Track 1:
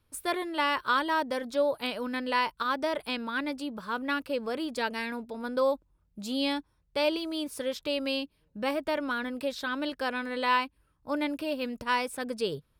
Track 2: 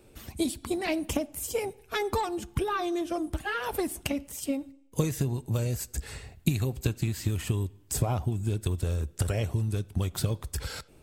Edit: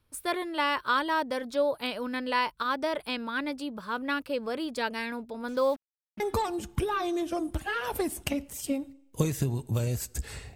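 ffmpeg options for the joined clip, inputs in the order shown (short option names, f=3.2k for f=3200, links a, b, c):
-filter_complex "[0:a]asettb=1/sr,asplit=3[a][b][c];[a]atrim=end=5.484[d];[b]atrim=start=5.48:end=6.2,asetpts=PTS-STARTPTS,afade=t=in:d=0.004:c=qsin,afade=t=out:st=0.716:d=0.004:c=qsin,acrusher=bits=7:mix=0:aa=0.5[e];[c]atrim=start=6.196[f];[d][e]acrossfade=d=0.004:c1=hsin:c2=qsin[g];[g][f]acrossfade=d=0.004:c1=qsin:c2=hsin,apad=whole_dur=10.55,atrim=end=10.55,atrim=end=6.202[h];[1:a]atrim=start=1.988:end=6.34[i];[h][i]acrossfade=d=0.004:c1=hsin:c2=hsin"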